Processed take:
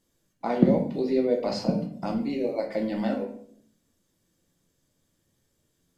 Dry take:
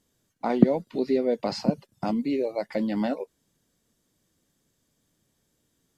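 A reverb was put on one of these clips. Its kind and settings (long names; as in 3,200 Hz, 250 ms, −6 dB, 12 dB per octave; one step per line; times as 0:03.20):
rectangular room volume 92 cubic metres, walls mixed, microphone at 0.7 metres
level −3 dB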